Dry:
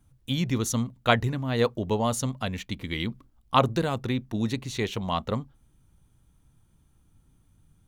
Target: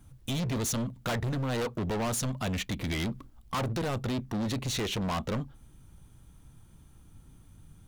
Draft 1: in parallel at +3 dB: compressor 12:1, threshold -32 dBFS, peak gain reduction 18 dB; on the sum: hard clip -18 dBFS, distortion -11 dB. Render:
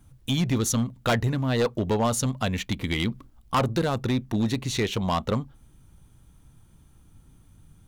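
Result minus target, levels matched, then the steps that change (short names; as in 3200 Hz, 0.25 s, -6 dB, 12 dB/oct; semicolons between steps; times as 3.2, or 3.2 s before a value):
hard clip: distortion -7 dB
change: hard clip -28.5 dBFS, distortion -4 dB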